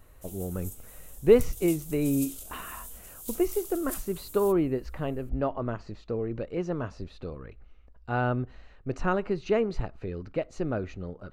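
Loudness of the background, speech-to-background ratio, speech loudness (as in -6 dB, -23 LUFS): -41.0 LUFS, 11.5 dB, -29.5 LUFS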